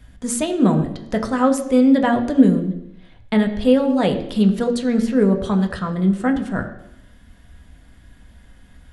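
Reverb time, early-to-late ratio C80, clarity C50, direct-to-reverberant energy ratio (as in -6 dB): 0.85 s, 12.0 dB, 10.0 dB, 3.5 dB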